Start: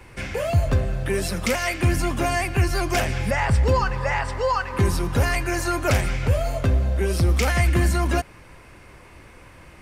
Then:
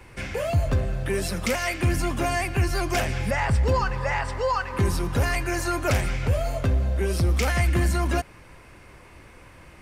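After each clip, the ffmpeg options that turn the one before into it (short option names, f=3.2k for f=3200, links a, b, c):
-af "acontrast=89,volume=-9dB"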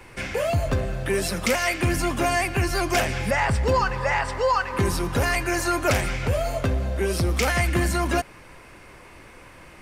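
-af "equalizer=f=64:w=0.48:g=-6.5,volume=3.5dB"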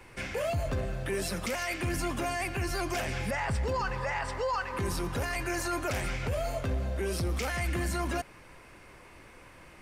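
-af "alimiter=limit=-18dB:level=0:latency=1:release=10,volume=-6dB"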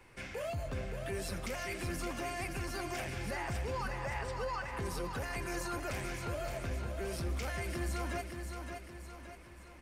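-af "aecho=1:1:569|1138|1707|2276|2845|3414:0.501|0.241|0.115|0.0554|0.0266|0.0128,volume=-7.5dB"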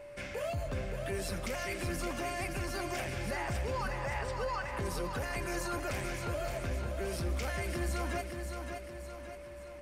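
-af "aeval=exprs='val(0)+0.00398*sin(2*PI*580*n/s)':c=same,volume=2dB"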